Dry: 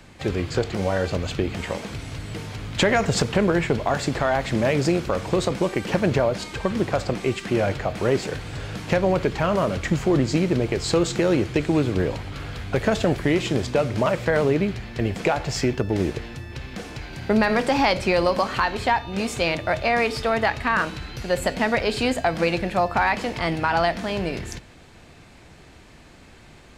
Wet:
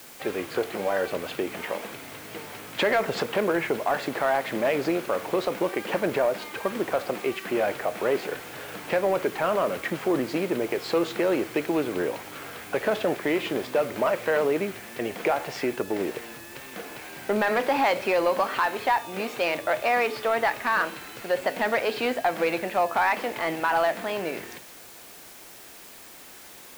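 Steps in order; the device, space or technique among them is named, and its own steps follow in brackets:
tape answering machine (band-pass filter 350–3,000 Hz; soft clipping −13.5 dBFS, distortion −19 dB; tape wow and flutter; white noise bed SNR 20 dB)

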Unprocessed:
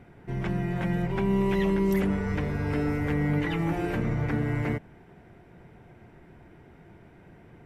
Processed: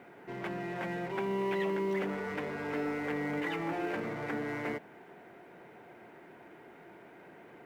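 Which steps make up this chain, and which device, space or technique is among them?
phone line with mismatched companding (band-pass filter 350–3,400 Hz; mu-law and A-law mismatch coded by mu)
level −3.5 dB

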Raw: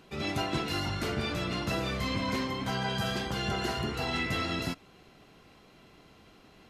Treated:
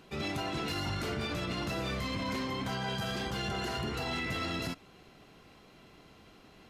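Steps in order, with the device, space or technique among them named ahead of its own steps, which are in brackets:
limiter into clipper (brickwall limiter −25.5 dBFS, peak gain reduction 6 dB; hard clipping −28.5 dBFS, distortion −22 dB)

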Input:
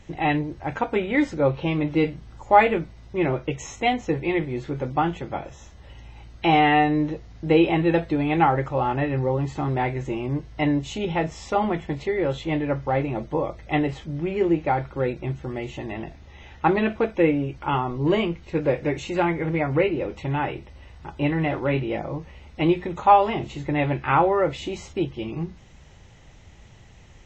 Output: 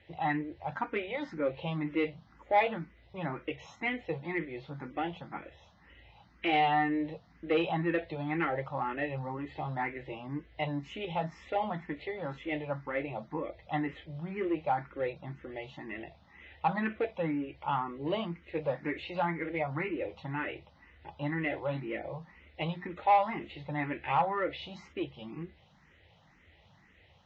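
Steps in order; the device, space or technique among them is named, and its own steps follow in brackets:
barber-pole phaser into a guitar amplifier (frequency shifter mixed with the dry sound +2 Hz; soft clipping −12 dBFS, distortion −18 dB; loudspeaker in its box 100–4,400 Hz, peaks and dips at 120 Hz −10 dB, 240 Hz −4 dB, 390 Hz −6 dB, 1,900 Hz +4 dB)
level −5 dB

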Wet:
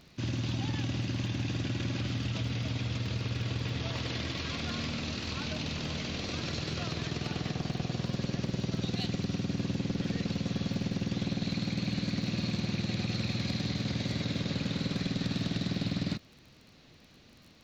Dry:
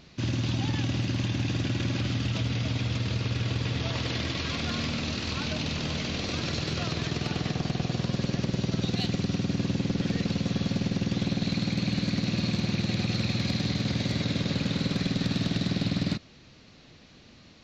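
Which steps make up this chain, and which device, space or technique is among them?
vinyl LP (surface crackle 21 per second −40 dBFS; pink noise bed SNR 44 dB)
level −4.5 dB

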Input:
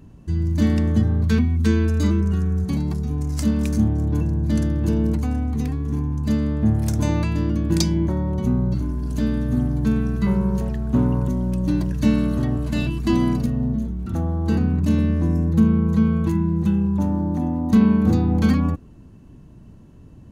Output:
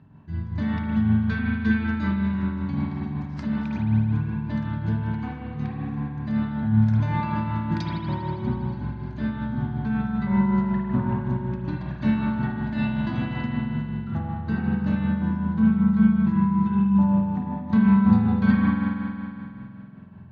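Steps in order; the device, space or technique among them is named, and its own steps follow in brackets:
combo amplifier with spring reverb and tremolo (spring reverb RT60 2.7 s, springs 46 ms, chirp 35 ms, DRR −4.5 dB; amplitude tremolo 5.3 Hz, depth 39%; loudspeaker in its box 100–3,700 Hz, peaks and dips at 140 Hz +5 dB, 320 Hz −10 dB, 480 Hz −8 dB, 880 Hz +4 dB, 1,600 Hz +5 dB, 2,900 Hz −5 dB)
level −4 dB

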